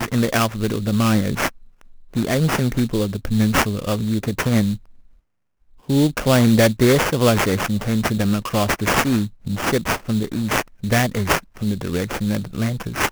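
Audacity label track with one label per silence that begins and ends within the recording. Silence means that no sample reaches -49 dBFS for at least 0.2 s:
5.190000	5.690000	silence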